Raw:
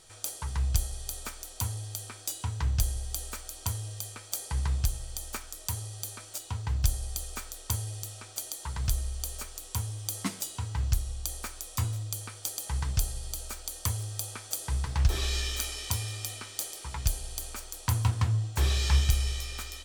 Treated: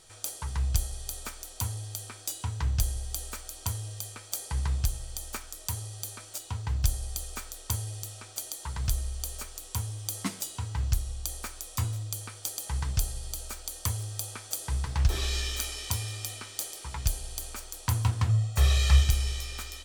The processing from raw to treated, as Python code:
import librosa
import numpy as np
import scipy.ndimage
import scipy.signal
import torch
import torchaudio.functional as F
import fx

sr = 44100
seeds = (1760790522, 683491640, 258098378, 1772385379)

y = fx.comb(x, sr, ms=1.6, depth=0.67, at=(18.29, 19.03))